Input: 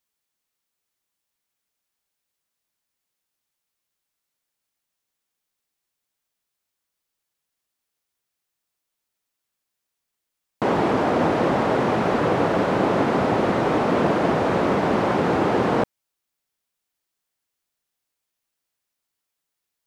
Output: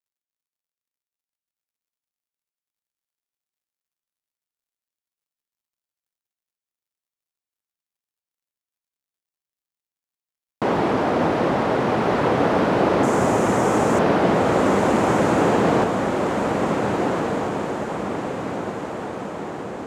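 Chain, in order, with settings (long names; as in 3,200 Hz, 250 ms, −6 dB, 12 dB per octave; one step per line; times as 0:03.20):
0:13.03–0:13.99: high shelf with overshoot 5,400 Hz +10.5 dB, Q 3
bit reduction 12 bits
feedback delay with all-pass diffusion 1,555 ms, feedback 55%, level −3 dB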